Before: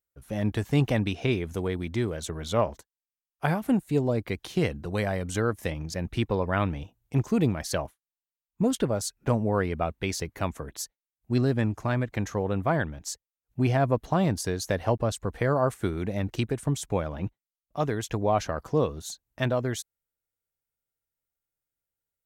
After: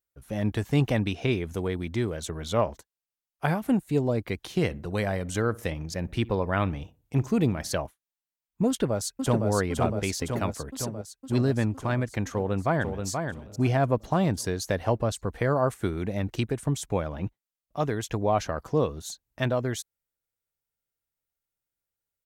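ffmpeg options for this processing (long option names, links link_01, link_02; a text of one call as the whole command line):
ffmpeg -i in.wav -filter_complex "[0:a]asettb=1/sr,asplit=3[link_01][link_02][link_03];[link_01]atrim=end=4.544[link_04];[link_02]atrim=start=4.54:end=7.73,asetpts=PTS-STARTPTS,afade=type=in:duration=0.004:curve=qsin,afade=type=out:start_time=3.186:duration=0.004:curve=qsin,asplit=2[link_05][link_06];[link_06]adelay=61,lowpass=frequency=1400:poles=1,volume=-20.5dB,asplit=2[link_07][link_08];[link_08]adelay=61,lowpass=frequency=1400:poles=1,volume=0.45,asplit=2[link_09][link_10];[link_10]adelay=61,lowpass=frequency=1400:poles=1,volume=0.45[link_11];[link_05][link_07][link_09][link_11]amix=inputs=4:normalize=0,atrim=end_sample=140679[link_12];[link_03]atrim=start=7.726[link_13];[link_04][link_12]acrossfade=duration=0.004:curve1=hsin:curve2=qsin[link_14];[link_14][link_13]acrossfade=duration=0.004:curve1=qsin:curve2=hsin,asplit=2[link_15][link_16];[link_16]afade=type=in:start_time=8.68:duration=0.01,afade=type=out:start_time=9.48:duration=0.01,aecho=0:1:510|1020|1530|2040|2550|3060|3570|4080|4590|5100|5610|6120:0.668344|0.467841|0.327489|0.229242|0.160469|0.112329|0.07863|0.055041|0.0385287|0.0269701|0.0188791|0.0132153[link_17];[link_15][link_17]amix=inputs=2:normalize=0,asplit=2[link_18][link_19];[link_19]afade=type=in:start_time=12.36:duration=0.01,afade=type=out:start_time=13.07:duration=0.01,aecho=0:1:480|960:0.530884|0.0530884[link_20];[link_18][link_20]amix=inputs=2:normalize=0" out.wav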